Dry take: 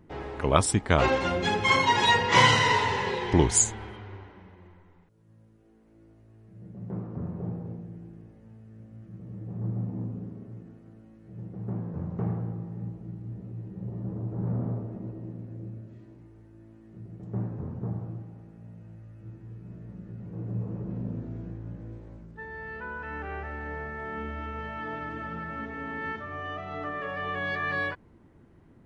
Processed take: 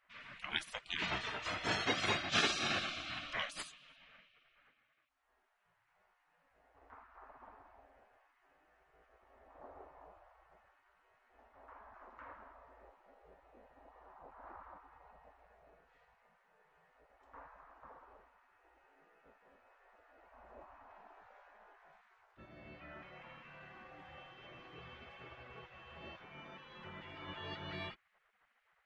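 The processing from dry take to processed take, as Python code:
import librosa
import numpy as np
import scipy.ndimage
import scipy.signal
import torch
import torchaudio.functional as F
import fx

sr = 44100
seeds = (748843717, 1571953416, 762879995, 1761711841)

y = fx.bass_treble(x, sr, bass_db=-10, treble_db=-13)
y = fx.spec_gate(y, sr, threshold_db=-20, keep='weak')
y = F.gain(torch.from_numpy(y), 1.5).numpy()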